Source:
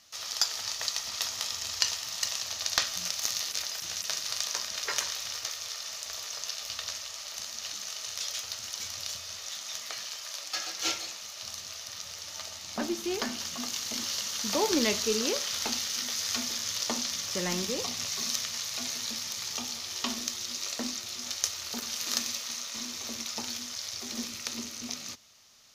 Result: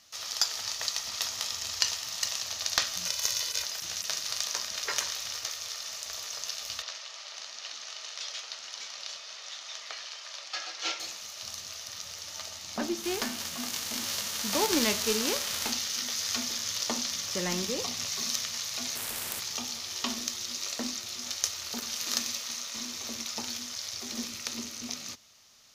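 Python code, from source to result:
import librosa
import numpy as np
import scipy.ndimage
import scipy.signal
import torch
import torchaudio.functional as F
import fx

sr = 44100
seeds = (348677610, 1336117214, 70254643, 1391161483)

y = fx.comb(x, sr, ms=2.0, depth=0.64, at=(3.06, 3.64))
y = fx.bandpass_edges(y, sr, low_hz=450.0, high_hz=4800.0, at=(6.82, 11.0))
y = fx.envelope_flatten(y, sr, power=0.6, at=(13.02, 15.71), fade=0.02)
y = fx.spectral_comp(y, sr, ratio=10.0, at=(18.95, 19.39), fade=0.02)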